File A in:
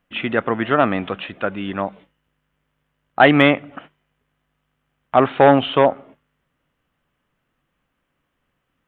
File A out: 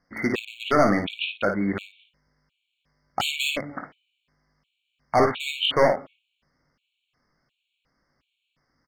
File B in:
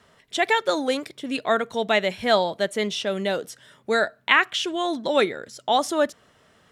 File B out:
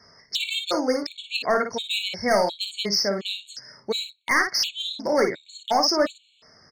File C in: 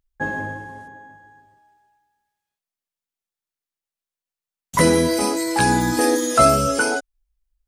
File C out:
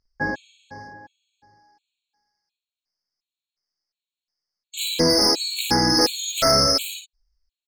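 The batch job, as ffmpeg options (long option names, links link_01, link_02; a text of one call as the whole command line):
ffmpeg -i in.wav -filter_complex "[0:a]lowpass=frequency=5100:width_type=q:width=10,volume=14.5dB,asoftclip=hard,volume=-14.5dB,asplit=2[link_01][link_02];[link_02]aecho=0:1:20|55:0.316|0.473[link_03];[link_01][link_03]amix=inputs=2:normalize=0,afftfilt=real='re*gt(sin(2*PI*1.4*pts/sr)*(1-2*mod(floor(b*sr/1024/2200),2)),0)':imag='im*gt(sin(2*PI*1.4*pts/sr)*(1-2*mod(floor(b*sr/1024/2200),2)),0)':win_size=1024:overlap=0.75" out.wav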